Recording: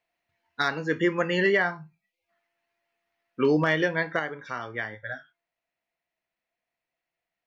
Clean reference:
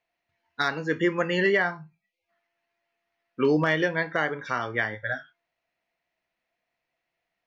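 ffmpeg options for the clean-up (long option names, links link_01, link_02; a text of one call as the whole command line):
ffmpeg -i in.wav -af "asetnsamples=nb_out_samples=441:pad=0,asendcmd='4.19 volume volume 5.5dB',volume=0dB" out.wav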